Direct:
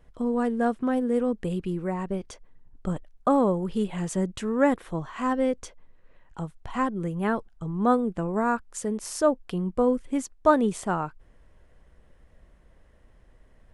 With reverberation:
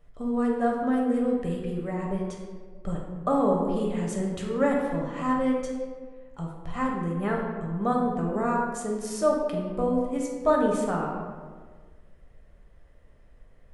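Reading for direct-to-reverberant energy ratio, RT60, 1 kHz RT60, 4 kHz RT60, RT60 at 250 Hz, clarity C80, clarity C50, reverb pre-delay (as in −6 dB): −1.5 dB, 1.6 s, 1.4 s, 0.85 s, 1.8 s, 4.0 dB, 2.0 dB, 4 ms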